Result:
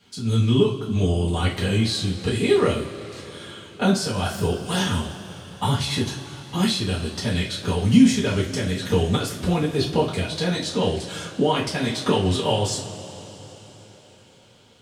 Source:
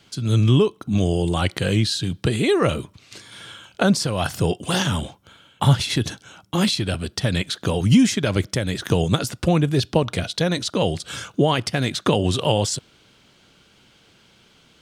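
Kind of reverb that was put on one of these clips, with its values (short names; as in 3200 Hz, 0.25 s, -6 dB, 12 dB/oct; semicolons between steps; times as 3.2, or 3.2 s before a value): two-slope reverb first 0.31 s, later 4.5 s, from -21 dB, DRR -7 dB; gain -9.5 dB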